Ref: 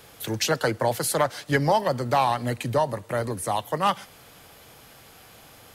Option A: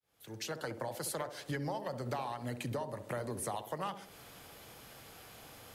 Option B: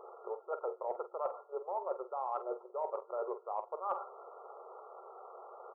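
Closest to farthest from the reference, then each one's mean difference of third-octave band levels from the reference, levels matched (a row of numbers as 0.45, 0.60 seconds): A, B; 6.5, 20.0 decibels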